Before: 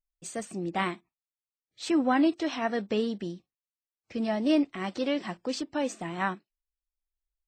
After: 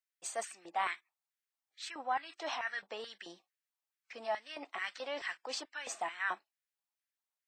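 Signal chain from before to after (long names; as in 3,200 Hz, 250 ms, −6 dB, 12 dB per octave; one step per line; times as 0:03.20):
reversed playback
downward compressor 12 to 1, threshold −32 dBFS, peak gain reduction 13.5 dB
reversed playback
auto-filter high-pass square 2.3 Hz 800–1,700 Hz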